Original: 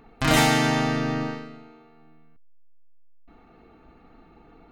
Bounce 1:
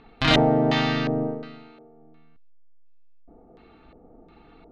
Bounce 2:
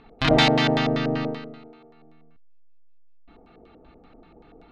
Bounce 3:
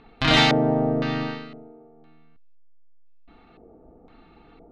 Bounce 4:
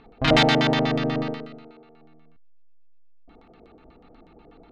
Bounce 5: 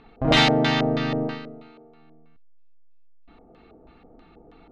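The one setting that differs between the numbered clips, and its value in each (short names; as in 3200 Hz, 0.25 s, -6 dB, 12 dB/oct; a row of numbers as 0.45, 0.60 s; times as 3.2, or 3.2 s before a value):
LFO low-pass, rate: 1.4, 5.2, 0.98, 8.2, 3.1 Hz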